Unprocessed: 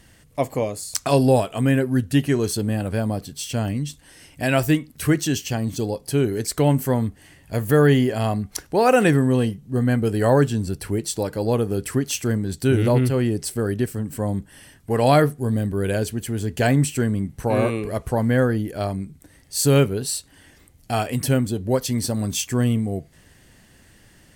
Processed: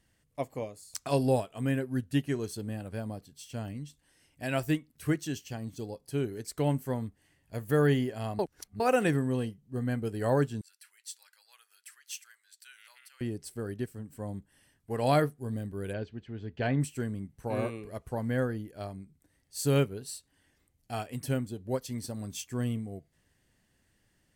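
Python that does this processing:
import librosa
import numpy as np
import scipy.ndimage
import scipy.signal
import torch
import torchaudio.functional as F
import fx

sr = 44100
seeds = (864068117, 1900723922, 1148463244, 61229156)

y = fx.highpass(x, sr, hz=1500.0, slope=24, at=(10.61, 13.21))
y = fx.lowpass(y, sr, hz=4000.0, slope=24, at=(15.92, 16.8), fade=0.02)
y = fx.edit(y, sr, fx.reverse_span(start_s=8.39, length_s=0.41), tone=tone)
y = fx.upward_expand(y, sr, threshold_db=-33.0, expansion=1.5)
y = y * 10.0 ** (-8.5 / 20.0)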